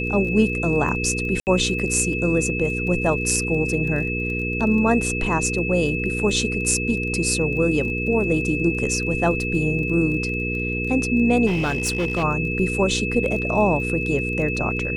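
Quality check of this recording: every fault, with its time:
surface crackle 17 per second −31 dBFS
mains hum 60 Hz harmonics 8 −27 dBFS
whistle 2,600 Hz −26 dBFS
0:01.40–0:01.47: drop-out 69 ms
0:11.46–0:12.24: clipping −18 dBFS

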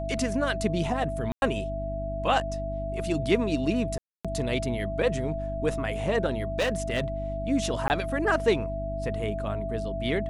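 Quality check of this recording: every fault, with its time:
mains hum 50 Hz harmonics 6 −34 dBFS
whistle 660 Hz −32 dBFS
0:01.32–0:01.42: drop-out 101 ms
0:03.98–0:04.25: drop-out 266 ms
0:06.59–0:07.04: clipping −21.5 dBFS
0:07.88–0:07.90: drop-out 19 ms

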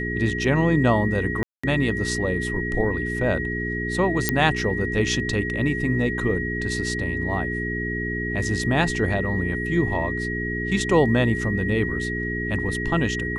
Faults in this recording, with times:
mains hum 60 Hz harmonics 7 −29 dBFS
whistle 1,900 Hz −28 dBFS
0:01.43–0:01.64: drop-out 205 ms
0:04.29: click −3 dBFS

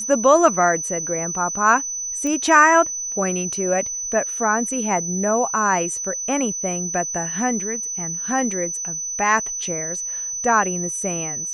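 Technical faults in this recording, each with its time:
whistle 6,000 Hz −25 dBFS
0:02.27: click −14 dBFS

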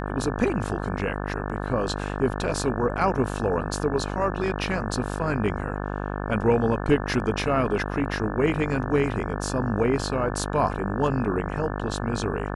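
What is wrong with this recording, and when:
mains buzz 50 Hz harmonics 35 −30 dBFS

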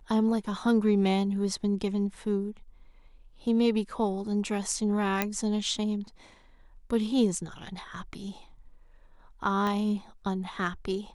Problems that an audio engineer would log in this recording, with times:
0:05.22: click −10 dBFS
0:09.67: click −19 dBFS

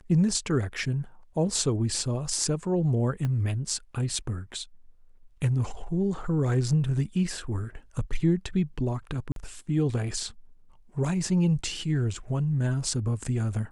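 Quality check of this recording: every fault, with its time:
0:03.25: click −19 dBFS
0:09.32–0:09.36: drop-out 42 ms

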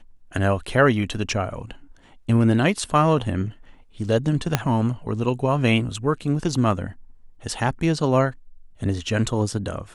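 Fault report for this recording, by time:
0:04.55: click −3 dBFS

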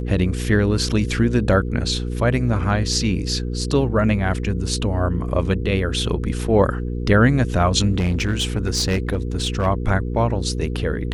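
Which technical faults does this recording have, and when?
mains hum 60 Hz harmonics 8 −25 dBFS
0:07.98–0:09.67: clipping −15.5 dBFS

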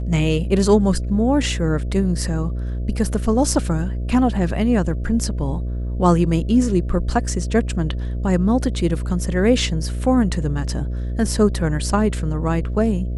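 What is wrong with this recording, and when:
mains buzz 60 Hz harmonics 11 −24 dBFS

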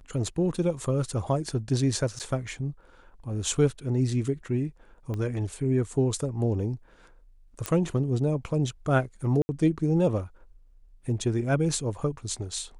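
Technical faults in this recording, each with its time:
0:02.19–0:02.20: drop-out 8.2 ms
0:05.14: click −22 dBFS
0:07.66: click −12 dBFS
0:09.42–0:09.49: drop-out 70 ms

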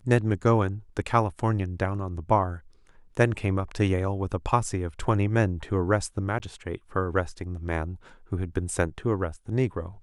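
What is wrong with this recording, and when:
0:06.39–0:06.40: drop-out 9.7 ms

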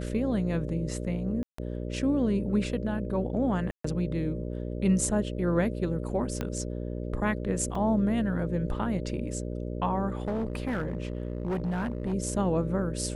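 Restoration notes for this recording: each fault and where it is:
mains buzz 60 Hz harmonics 10 −34 dBFS
0:01.43–0:01.58: drop-out 154 ms
0:03.71–0:03.84: drop-out 134 ms
0:06.41: click −17 dBFS
0:07.75: drop-out 3.3 ms
0:10.17–0:12.14: clipping −26 dBFS

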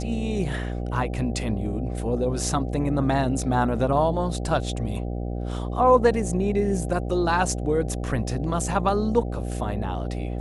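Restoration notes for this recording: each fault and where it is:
mains buzz 60 Hz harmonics 13 −29 dBFS

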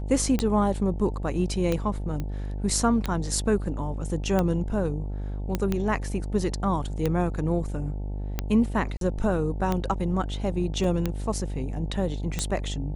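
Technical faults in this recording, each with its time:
mains buzz 50 Hz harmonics 18 −31 dBFS
scratch tick 45 rpm −12 dBFS
0:02.20: click −19 dBFS
0:05.55: click −12 dBFS
0:08.97–0:09.01: drop-out 42 ms
0:10.84: drop-out 2.5 ms

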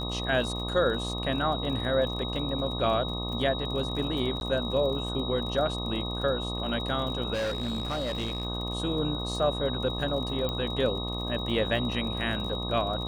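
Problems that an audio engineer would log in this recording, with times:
mains buzz 60 Hz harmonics 21 −34 dBFS
surface crackle 39 per second −36 dBFS
whistle 3,800 Hz −35 dBFS
0:04.40–0:04.41: drop-out 11 ms
0:07.33–0:08.45: clipping −26.5 dBFS
0:10.49: click −18 dBFS

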